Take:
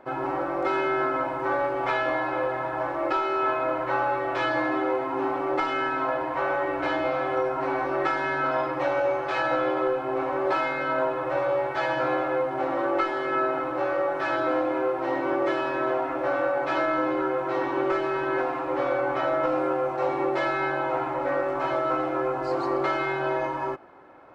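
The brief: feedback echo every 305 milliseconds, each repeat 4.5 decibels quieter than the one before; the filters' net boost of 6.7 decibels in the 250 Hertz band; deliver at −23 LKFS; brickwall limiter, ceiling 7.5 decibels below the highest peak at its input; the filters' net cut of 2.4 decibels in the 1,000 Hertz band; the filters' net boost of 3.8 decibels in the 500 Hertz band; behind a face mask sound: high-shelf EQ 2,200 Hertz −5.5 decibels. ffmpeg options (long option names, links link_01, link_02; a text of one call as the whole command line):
ffmpeg -i in.wav -af "equalizer=frequency=250:width_type=o:gain=8.5,equalizer=frequency=500:width_type=o:gain=3.5,equalizer=frequency=1000:width_type=o:gain=-3.5,alimiter=limit=-18dB:level=0:latency=1,highshelf=frequency=2200:gain=-5.5,aecho=1:1:305|610|915|1220|1525|1830|2135|2440|2745:0.596|0.357|0.214|0.129|0.0772|0.0463|0.0278|0.0167|0.01,volume=2dB" out.wav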